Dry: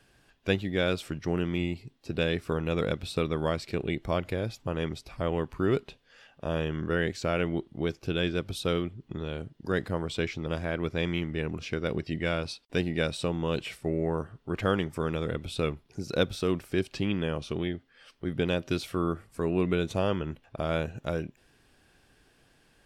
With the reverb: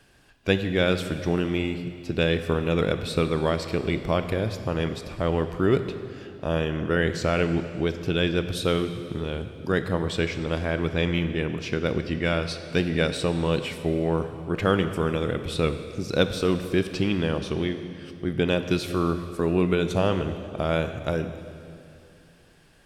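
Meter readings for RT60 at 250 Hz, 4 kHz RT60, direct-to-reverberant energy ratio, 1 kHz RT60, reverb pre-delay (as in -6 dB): 2.8 s, 2.3 s, 9.0 dB, 2.4 s, 16 ms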